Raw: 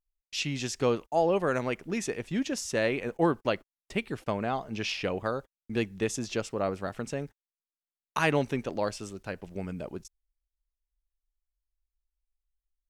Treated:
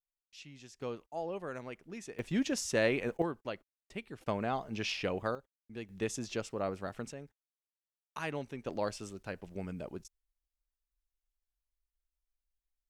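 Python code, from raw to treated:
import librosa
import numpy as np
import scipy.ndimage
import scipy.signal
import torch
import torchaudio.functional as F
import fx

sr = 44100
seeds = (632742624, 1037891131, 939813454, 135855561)

y = fx.gain(x, sr, db=fx.steps((0.0, -20.0), (0.82, -13.5), (2.19, -1.5), (3.22, -11.5), (4.21, -3.5), (5.35, -14.5), (5.89, -5.5), (7.12, -12.5), (8.66, -4.5)))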